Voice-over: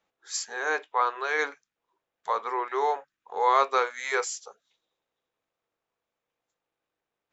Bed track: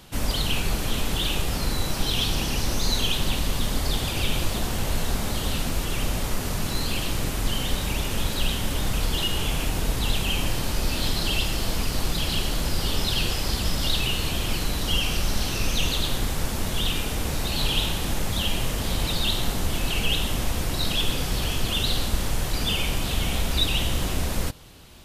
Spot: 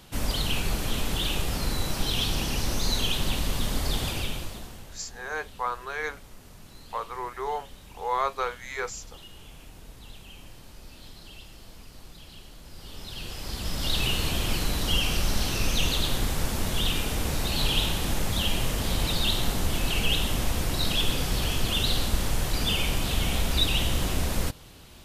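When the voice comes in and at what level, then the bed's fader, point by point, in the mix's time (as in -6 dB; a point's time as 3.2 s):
4.65 s, -5.0 dB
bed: 4.09 s -2.5 dB
4.98 s -21.5 dB
12.62 s -21.5 dB
14.04 s -1 dB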